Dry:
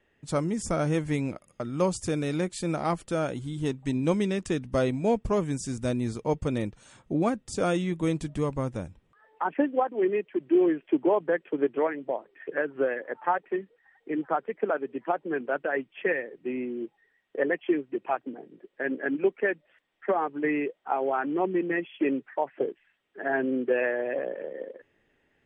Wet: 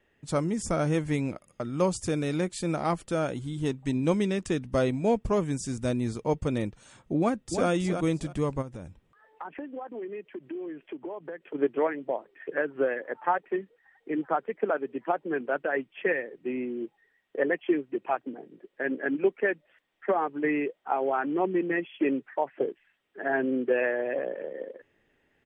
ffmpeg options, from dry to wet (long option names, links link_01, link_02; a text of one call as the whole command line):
ffmpeg -i in.wav -filter_complex "[0:a]asplit=2[link_01][link_02];[link_02]afade=type=in:start_time=7.19:duration=0.01,afade=type=out:start_time=7.68:duration=0.01,aecho=0:1:320|640|960:0.473151|0.0946303|0.0189261[link_03];[link_01][link_03]amix=inputs=2:normalize=0,asplit=3[link_04][link_05][link_06];[link_04]afade=type=out:start_time=8.61:duration=0.02[link_07];[link_05]acompressor=threshold=-35dB:ratio=6:attack=3.2:release=140:knee=1:detection=peak,afade=type=in:start_time=8.61:duration=0.02,afade=type=out:start_time=11.54:duration=0.02[link_08];[link_06]afade=type=in:start_time=11.54:duration=0.02[link_09];[link_07][link_08][link_09]amix=inputs=3:normalize=0" out.wav